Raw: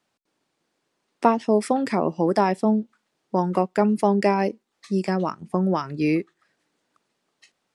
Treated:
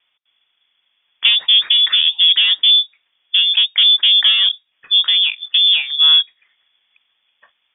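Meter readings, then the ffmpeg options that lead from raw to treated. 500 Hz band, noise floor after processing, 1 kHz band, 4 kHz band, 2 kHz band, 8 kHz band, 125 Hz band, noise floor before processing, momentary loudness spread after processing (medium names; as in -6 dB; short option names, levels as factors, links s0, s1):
under -30 dB, -69 dBFS, under -15 dB, +37.0 dB, +12.5 dB, no reading, under -40 dB, -76 dBFS, 6 LU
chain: -filter_complex "[0:a]lowshelf=f=440:t=q:w=1.5:g=6.5,asplit=2[s0][s1];[s1]highpass=f=720:p=1,volume=8.91,asoftclip=type=tanh:threshold=0.841[s2];[s0][s2]amix=inputs=2:normalize=0,lowpass=f=1100:p=1,volume=0.501,lowpass=f=3100:t=q:w=0.5098,lowpass=f=3100:t=q:w=0.6013,lowpass=f=3100:t=q:w=0.9,lowpass=f=3100:t=q:w=2.563,afreqshift=-3700"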